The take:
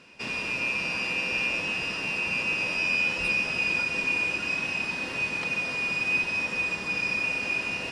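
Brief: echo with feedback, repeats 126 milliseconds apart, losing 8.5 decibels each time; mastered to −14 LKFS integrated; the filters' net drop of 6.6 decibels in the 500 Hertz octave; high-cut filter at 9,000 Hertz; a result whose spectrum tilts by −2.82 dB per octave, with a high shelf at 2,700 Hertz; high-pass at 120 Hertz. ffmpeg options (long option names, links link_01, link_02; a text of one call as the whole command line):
ffmpeg -i in.wav -af "highpass=120,lowpass=9000,equalizer=frequency=500:width_type=o:gain=-8,highshelf=frequency=2700:gain=-4.5,aecho=1:1:126|252|378|504:0.376|0.143|0.0543|0.0206,volume=13.5dB" out.wav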